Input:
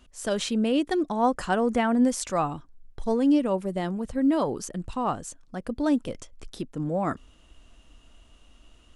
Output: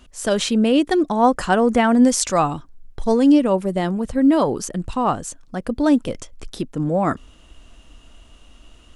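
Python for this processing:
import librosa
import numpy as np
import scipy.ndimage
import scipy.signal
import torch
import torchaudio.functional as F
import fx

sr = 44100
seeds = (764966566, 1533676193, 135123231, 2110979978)

y = fx.dynamic_eq(x, sr, hz=5700.0, q=0.78, threshold_db=-48.0, ratio=4.0, max_db=5, at=(1.83, 3.32))
y = y * librosa.db_to_amplitude(7.5)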